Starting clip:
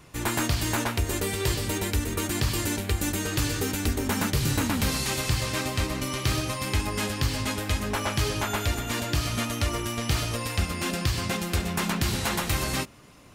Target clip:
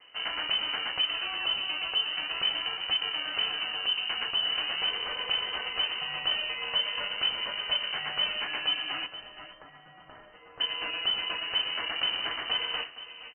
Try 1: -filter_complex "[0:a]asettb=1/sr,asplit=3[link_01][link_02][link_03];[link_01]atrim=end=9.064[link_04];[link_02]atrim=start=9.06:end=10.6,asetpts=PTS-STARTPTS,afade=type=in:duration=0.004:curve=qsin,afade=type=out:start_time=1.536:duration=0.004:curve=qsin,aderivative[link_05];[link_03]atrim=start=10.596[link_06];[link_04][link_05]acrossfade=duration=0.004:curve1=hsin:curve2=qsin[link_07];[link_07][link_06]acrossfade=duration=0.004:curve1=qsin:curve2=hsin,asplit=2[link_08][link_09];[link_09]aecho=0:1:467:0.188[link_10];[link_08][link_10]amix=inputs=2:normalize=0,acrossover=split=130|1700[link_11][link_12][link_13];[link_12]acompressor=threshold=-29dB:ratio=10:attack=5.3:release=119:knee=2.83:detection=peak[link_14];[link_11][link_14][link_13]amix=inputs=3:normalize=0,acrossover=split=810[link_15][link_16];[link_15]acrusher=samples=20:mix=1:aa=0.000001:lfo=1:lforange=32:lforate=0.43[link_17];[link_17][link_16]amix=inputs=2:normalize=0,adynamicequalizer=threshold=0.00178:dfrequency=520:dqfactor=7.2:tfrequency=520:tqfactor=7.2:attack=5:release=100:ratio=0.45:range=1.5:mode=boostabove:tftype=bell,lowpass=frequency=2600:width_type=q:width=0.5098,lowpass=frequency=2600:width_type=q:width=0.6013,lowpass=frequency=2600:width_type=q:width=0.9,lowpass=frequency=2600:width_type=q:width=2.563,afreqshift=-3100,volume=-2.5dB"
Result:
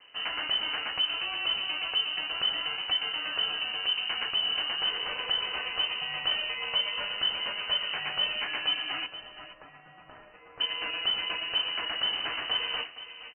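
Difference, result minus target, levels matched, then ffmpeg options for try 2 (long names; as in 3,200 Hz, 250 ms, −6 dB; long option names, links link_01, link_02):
sample-and-hold swept by an LFO: distortion −7 dB
-filter_complex "[0:a]asettb=1/sr,asplit=3[link_01][link_02][link_03];[link_01]atrim=end=9.064[link_04];[link_02]atrim=start=9.06:end=10.6,asetpts=PTS-STARTPTS,afade=type=in:duration=0.004:curve=qsin,afade=type=out:start_time=1.536:duration=0.004:curve=qsin,aderivative[link_05];[link_03]atrim=start=10.596[link_06];[link_04][link_05]acrossfade=duration=0.004:curve1=hsin:curve2=qsin[link_07];[link_07][link_06]acrossfade=duration=0.004:curve1=qsin:curve2=hsin,asplit=2[link_08][link_09];[link_09]aecho=0:1:467:0.188[link_10];[link_08][link_10]amix=inputs=2:normalize=0,acrossover=split=130|1700[link_11][link_12][link_13];[link_12]acompressor=threshold=-29dB:ratio=10:attack=5.3:release=119:knee=2.83:detection=peak[link_14];[link_11][link_14][link_13]amix=inputs=3:normalize=0,acrossover=split=810[link_15][link_16];[link_15]acrusher=samples=52:mix=1:aa=0.000001:lfo=1:lforange=83.2:lforate=0.43[link_17];[link_17][link_16]amix=inputs=2:normalize=0,adynamicequalizer=threshold=0.00178:dfrequency=520:dqfactor=7.2:tfrequency=520:tqfactor=7.2:attack=5:release=100:ratio=0.45:range=1.5:mode=boostabove:tftype=bell,lowpass=frequency=2600:width_type=q:width=0.5098,lowpass=frequency=2600:width_type=q:width=0.6013,lowpass=frequency=2600:width_type=q:width=0.9,lowpass=frequency=2600:width_type=q:width=2.563,afreqshift=-3100,volume=-2.5dB"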